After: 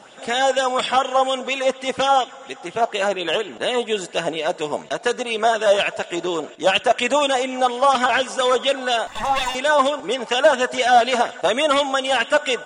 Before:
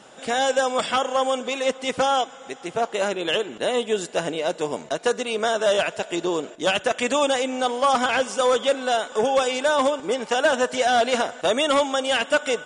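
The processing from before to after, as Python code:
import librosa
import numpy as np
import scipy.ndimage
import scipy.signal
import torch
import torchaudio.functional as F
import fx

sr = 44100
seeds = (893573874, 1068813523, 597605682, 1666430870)

y = fx.lower_of_two(x, sr, delay_ms=1.1, at=(9.07, 9.55))
y = fx.bell_lfo(y, sr, hz=4.2, low_hz=660.0, high_hz=3400.0, db=9)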